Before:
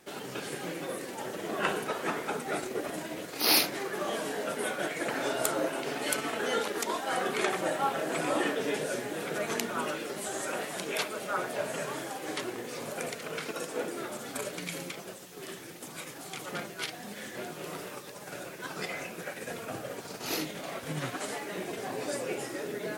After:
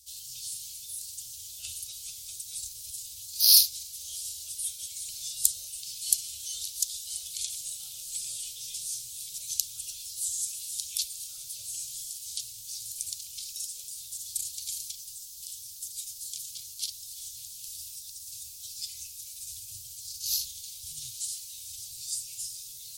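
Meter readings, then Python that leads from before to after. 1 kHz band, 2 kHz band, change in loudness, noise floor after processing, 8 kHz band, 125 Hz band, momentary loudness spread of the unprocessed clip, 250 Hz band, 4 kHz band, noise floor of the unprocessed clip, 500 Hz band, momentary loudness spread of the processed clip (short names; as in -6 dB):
under -40 dB, -23.5 dB, +2.0 dB, -45 dBFS, +9.0 dB, under -10 dB, 11 LU, under -35 dB, +4.5 dB, -45 dBFS, under -40 dB, 12 LU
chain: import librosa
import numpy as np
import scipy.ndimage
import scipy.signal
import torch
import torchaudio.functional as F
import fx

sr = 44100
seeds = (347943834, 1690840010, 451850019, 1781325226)

y = scipy.signal.sosfilt(scipy.signal.cheby2(4, 50, [180.0, 1900.0], 'bandstop', fs=sr, output='sos'), x)
y = y * librosa.db_to_amplitude(9.0)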